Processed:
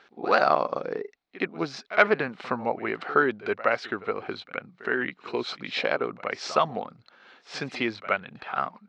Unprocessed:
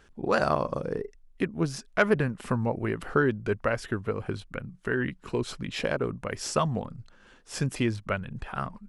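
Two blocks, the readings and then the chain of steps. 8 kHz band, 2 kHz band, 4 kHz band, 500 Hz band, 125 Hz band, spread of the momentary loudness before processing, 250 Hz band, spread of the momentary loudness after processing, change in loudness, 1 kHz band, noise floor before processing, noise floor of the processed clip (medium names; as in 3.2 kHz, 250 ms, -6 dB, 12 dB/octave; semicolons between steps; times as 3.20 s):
-7.5 dB, +4.5 dB, +4.0 dB, +1.5 dB, -12.5 dB, 11 LU, -3.5 dB, 12 LU, +2.0 dB, +5.5 dB, -57 dBFS, -64 dBFS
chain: cabinet simulation 300–5200 Hz, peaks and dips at 750 Hz +7 dB, 1.3 kHz +5 dB, 2.2 kHz +7 dB, 4 kHz +8 dB; pre-echo 67 ms -17 dB; trim +1 dB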